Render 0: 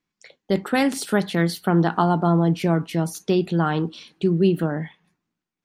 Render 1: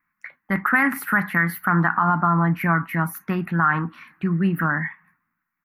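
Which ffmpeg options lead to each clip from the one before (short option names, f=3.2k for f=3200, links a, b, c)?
-af "firequalizer=gain_entry='entry(260,0);entry(410,-15);entry(1100,14);entry(1900,15);entry(3300,-17);entry(8200,-17);entry(12000,9)':delay=0.05:min_phase=1,alimiter=limit=-8dB:level=0:latency=1:release=61"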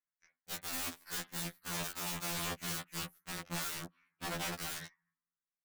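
-af "aeval=exprs='0.422*(cos(1*acos(clip(val(0)/0.422,-1,1)))-cos(1*PI/2))+0.0188*(cos(2*acos(clip(val(0)/0.422,-1,1)))-cos(2*PI/2))+0.0668*(cos(7*acos(clip(val(0)/0.422,-1,1)))-cos(7*PI/2))':c=same,aeval=exprs='(mod(13.3*val(0)+1,2)-1)/13.3':c=same,afftfilt=real='re*2*eq(mod(b,4),0)':imag='im*2*eq(mod(b,4),0)':win_size=2048:overlap=0.75,volume=-6dB"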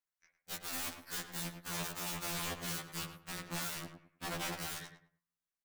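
-filter_complex "[0:a]asplit=2[a][b];[b]adelay=105,lowpass=f=1.8k:p=1,volume=-7dB,asplit=2[c][d];[d]adelay=105,lowpass=f=1.8k:p=1,volume=0.28,asplit=2[e][f];[f]adelay=105,lowpass=f=1.8k:p=1,volume=0.28[g];[a][c][e][g]amix=inputs=4:normalize=0,volume=-1dB"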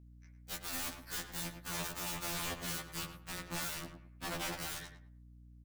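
-filter_complex "[0:a]aeval=exprs='val(0)+0.00158*(sin(2*PI*60*n/s)+sin(2*PI*2*60*n/s)/2+sin(2*PI*3*60*n/s)/3+sin(2*PI*4*60*n/s)/4+sin(2*PI*5*60*n/s)/5)':c=same,asplit=2[a][b];[b]adelay=15,volume=-14dB[c];[a][c]amix=inputs=2:normalize=0"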